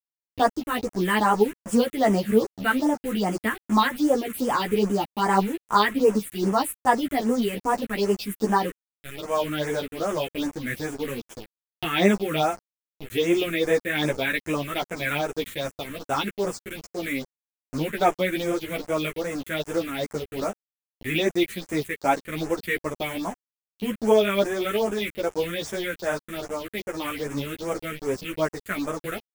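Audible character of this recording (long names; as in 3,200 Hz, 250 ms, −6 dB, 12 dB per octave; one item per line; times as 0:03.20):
a quantiser's noise floor 6 bits, dither none
phaser sweep stages 4, 2.5 Hz, lowest notch 770–4,100 Hz
tremolo triangle 3 Hz, depth 30%
a shimmering, thickened sound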